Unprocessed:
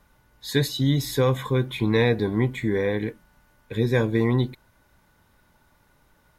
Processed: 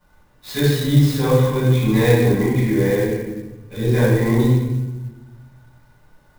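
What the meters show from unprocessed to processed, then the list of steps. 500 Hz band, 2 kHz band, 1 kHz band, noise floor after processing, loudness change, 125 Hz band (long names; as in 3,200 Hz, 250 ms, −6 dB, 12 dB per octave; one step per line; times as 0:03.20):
+5.5 dB, +3.5 dB, +4.5 dB, −55 dBFS, +6.0 dB, +8.5 dB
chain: mains-hum notches 50/100 Hz
rectangular room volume 620 cubic metres, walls mixed, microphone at 7.5 metres
converter with an unsteady clock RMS 0.027 ms
level −10 dB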